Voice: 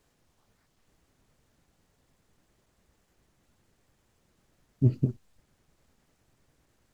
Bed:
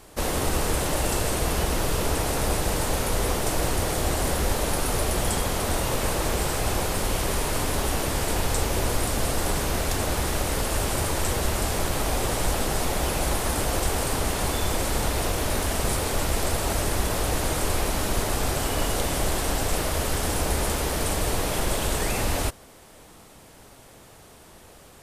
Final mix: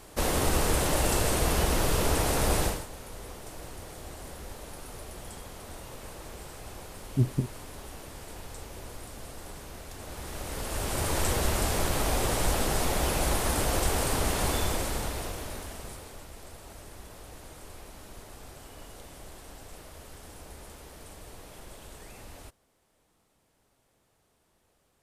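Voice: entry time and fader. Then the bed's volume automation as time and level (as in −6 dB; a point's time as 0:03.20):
2.35 s, −2.0 dB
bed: 0:02.65 −1 dB
0:02.88 −18 dB
0:09.91 −18 dB
0:11.17 −2 dB
0:14.56 −2 dB
0:16.29 −21.5 dB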